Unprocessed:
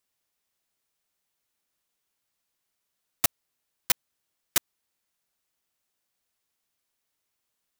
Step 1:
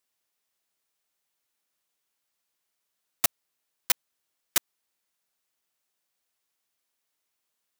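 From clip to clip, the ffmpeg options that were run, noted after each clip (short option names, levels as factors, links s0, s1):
-af "lowshelf=f=180:g=-8.5"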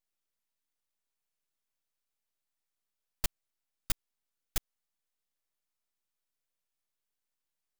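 -af "aeval=exprs='abs(val(0))':c=same,volume=0.473"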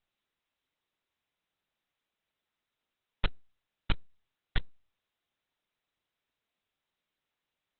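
-af "volume=2.66" -ar 48000 -c:a libopus -b:a 8k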